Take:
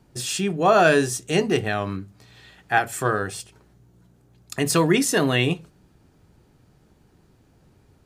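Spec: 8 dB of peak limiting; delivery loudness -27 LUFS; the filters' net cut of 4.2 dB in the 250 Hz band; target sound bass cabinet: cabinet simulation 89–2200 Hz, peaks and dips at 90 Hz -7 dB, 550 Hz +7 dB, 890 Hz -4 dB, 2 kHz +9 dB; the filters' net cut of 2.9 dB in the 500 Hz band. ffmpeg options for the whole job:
-af "equalizer=f=250:t=o:g=-4,equalizer=f=500:t=o:g=-6,alimiter=limit=0.2:level=0:latency=1,highpass=f=89:w=0.5412,highpass=f=89:w=1.3066,equalizer=f=90:t=q:w=4:g=-7,equalizer=f=550:t=q:w=4:g=7,equalizer=f=890:t=q:w=4:g=-4,equalizer=f=2000:t=q:w=4:g=9,lowpass=f=2200:w=0.5412,lowpass=f=2200:w=1.3066,volume=0.891"

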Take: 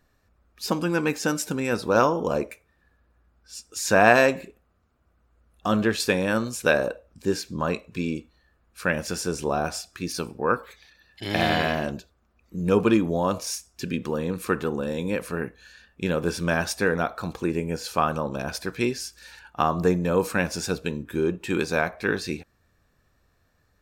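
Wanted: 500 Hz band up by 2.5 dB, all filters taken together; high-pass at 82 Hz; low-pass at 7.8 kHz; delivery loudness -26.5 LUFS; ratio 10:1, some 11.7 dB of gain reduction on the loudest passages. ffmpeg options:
-af "highpass=82,lowpass=7800,equalizer=f=500:t=o:g=3,acompressor=threshold=0.0794:ratio=10,volume=1.41"

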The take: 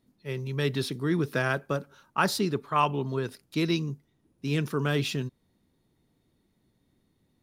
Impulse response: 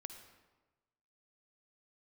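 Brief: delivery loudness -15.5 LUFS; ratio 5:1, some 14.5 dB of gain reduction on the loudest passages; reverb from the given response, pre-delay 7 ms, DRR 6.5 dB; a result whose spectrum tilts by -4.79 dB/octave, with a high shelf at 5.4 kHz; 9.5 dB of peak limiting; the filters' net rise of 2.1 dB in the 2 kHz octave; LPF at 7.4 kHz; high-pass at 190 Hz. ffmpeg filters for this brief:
-filter_complex "[0:a]highpass=190,lowpass=7400,equalizer=f=2000:t=o:g=4,highshelf=f=5400:g=-7.5,acompressor=threshold=0.0178:ratio=5,alimiter=level_in=2:limit=0.0631:level=0:latency=1,volume=0.501,asplit=2[s0][s1];[1:a]atrim=start_sample=2205,adelay=7[s2];[s1][s2]afir=irnorm=-1:irlink=0,volume=0.75[s3];[s0][s3]amix=inputs=2:normalize=0,volume=16.8"

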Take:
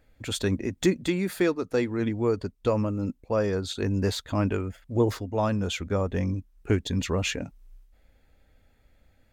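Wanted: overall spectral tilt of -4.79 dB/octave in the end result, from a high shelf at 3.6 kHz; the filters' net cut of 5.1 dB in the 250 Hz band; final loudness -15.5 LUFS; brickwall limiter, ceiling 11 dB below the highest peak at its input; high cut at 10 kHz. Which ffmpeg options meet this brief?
-af "lowpass=10000,equalizer=f=250:t=o:g=-7.5,highshelf=f=3600:g=6,volume=7.94,alimiter=limit=0.562:level=0:latency=1"

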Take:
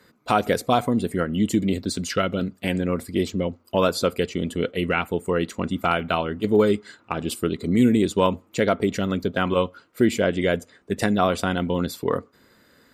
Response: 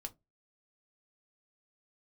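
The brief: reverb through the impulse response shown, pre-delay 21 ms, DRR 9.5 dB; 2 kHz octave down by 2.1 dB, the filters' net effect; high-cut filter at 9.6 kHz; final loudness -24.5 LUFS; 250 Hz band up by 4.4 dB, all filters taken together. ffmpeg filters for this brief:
-filter_complex "[0:a]lowpass=9600,equalizer=f=250:t=o:g=5.5,equalizer=f=2000:t=o:g=-3,asplit=2[s0][s1];[1:a]atrim=start_sample=2205,adelay=21[s2];[s1][s2]afir=irnorm=-1:irlink=0,volume=0.501[s3];[s0][s3]amix=inputs=2:normalize=0,volume=0.631"

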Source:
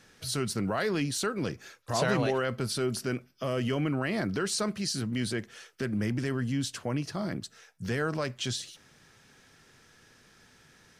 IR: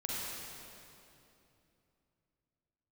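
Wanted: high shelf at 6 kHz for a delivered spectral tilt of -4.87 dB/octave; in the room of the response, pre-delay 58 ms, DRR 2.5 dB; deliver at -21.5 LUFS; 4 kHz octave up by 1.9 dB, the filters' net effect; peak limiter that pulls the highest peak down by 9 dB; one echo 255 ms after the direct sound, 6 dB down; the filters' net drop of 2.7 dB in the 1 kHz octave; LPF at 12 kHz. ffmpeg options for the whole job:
-filter_complex "[0:a]lowpass=12000,equalizer=f=1000:t=o:g=-4,equalizer=f=4000:t=o:g=4.5,highshelf=f=6000:g=-5,alimiter=limit=0.0631:level=0:latency=1,aecho=1:1:255:0.501,asplit=2[s0][s1];[1:a]atrim=start_sample=2205,adelay=58[s2];[s1][s2]afir=irnorm=-1:irlink=0,volume=0.473[s3];[s0][s3]amix=inputs=2:normalize=0,volume=2.99"

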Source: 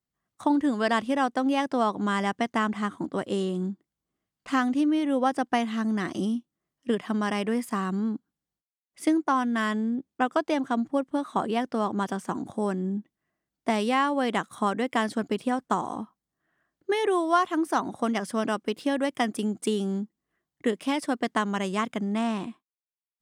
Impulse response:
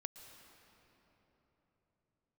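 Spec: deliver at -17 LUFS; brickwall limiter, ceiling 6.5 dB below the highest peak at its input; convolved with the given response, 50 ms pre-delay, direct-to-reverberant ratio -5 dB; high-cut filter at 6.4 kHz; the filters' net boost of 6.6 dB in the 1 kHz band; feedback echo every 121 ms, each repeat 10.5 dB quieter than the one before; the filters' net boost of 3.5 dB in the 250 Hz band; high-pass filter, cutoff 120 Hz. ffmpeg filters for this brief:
-filter_complex "[0:a]highpass=120,lowpass=6400,equalizer=f=250:t=o:g=4,equalizer=f=1000:t=o:g=8,alimiter=limit=0.266:level=0:latency=1,aecho=1:1:121|242|363:0.299|0.0896|0.0269,asplit=2[s0][s1];[1:a]atrim=start_sample=2205,adelay=50[s2];[s1][s2]afir=irnorm=-1:irlink=0,volume=2.66[s3];[s0][s3]amix=inputs=2:normalize=0,volume=1.12"

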